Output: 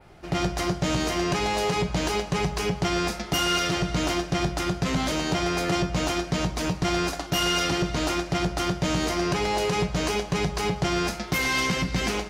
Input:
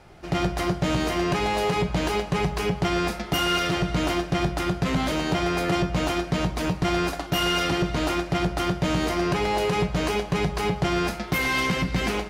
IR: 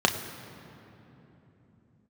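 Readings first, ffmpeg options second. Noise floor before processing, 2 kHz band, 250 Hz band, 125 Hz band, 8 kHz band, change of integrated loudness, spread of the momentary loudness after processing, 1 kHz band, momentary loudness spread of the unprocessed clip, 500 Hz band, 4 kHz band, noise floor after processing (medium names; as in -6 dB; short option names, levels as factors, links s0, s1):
-36 dBFS, -1.0 dB, -1.5 dB, -1.5 dB, +4.5 dB, -1.0 dB, 4 LU, -1.5 dB, 3 LU, -1.5 dB, +1.0 dB, -38 dBFS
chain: -af "adynamicequalizer=threshold=0.00398:dfrequency=6100:dqfactor=1.1:tfrequency=6100:tqfactor=1.1:attack=5:release=100:ratio=0.375:range=3.5:mode=boostabove:tftype=bell,volume=0.841"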